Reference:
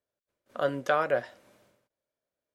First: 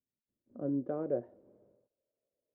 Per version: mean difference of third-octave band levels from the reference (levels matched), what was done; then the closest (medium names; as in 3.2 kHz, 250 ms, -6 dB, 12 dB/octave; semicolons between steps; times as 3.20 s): 10.0 dB: low-pass sweep 230 Hz -> 500 Hz, 0.16–1.83 s; trim -3.5 dB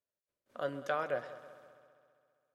3.5 dB: multi-head delay 66 ms, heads second and third, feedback 59%, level -17 dB; trim -8.5 dB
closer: second